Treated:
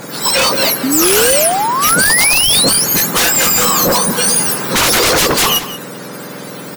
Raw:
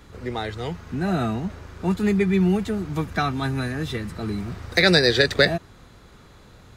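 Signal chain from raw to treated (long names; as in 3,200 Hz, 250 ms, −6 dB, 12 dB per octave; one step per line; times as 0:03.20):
frequency axis turned over on the octave scale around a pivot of 1,400 Hz
downward compressor 6 to 1, threshold −22 dBFS, peak gain reduction 9.5 dB
sine wavefolder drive 18 dB, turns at −11.5 dBFS
slap from a distant wall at 31 metres, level −12 dB
sound drawn into the spectrogram rise, 0:00.83–0:02.72, 250–4,600 Hz −18 dBFS
level +3 dB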